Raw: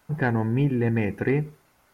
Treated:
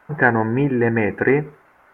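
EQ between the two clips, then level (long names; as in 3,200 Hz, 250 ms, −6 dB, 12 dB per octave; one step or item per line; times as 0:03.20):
drawn EQ curve 150 Hz 0 dB, 380 Hz +8 dB, 1,700 Hz +13 dB, 4,400 Hz −8 dB
0.0 dB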